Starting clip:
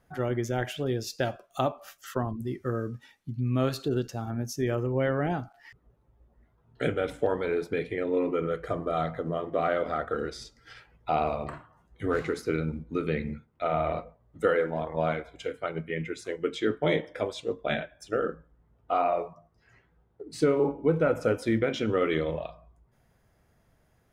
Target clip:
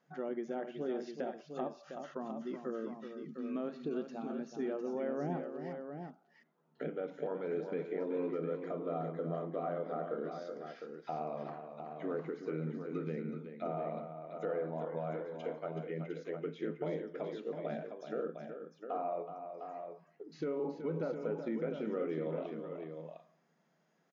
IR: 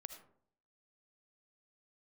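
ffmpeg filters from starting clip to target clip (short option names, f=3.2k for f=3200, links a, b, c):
-filter_complex "[0:a]afftfilt=real='re*between(b*sr/4096,140,7100)':imag='im*between(b*sr/4096,140,7100)':win_size=4096:overlap=0.75,acrossover=split=2900[a][b];[b]acompressor=threshold=-56dB:ratio=4:attack=1:release=60[c];[a][c]amix=inputs=2:normalize=0,acrossover=split=940[d][e];[d]alimiter=limit=-22.5dB:level=0:latency=1:release=113[f];[e]acompressor=threshold=-48dB:ratio=6[g];[f][g]amix=inputs=2:normalize=0,aecho=1:1:375|706:0.376|0.422,volume=-6.5dB"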